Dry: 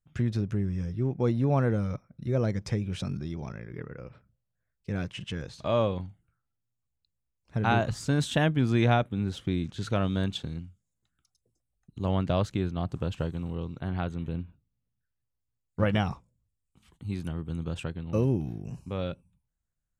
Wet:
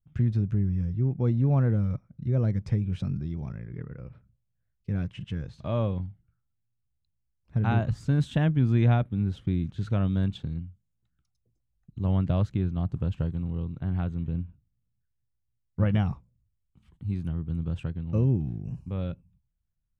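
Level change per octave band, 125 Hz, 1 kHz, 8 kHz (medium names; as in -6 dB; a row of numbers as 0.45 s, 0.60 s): +4.0 dB, -6.0 dB, under -10 dB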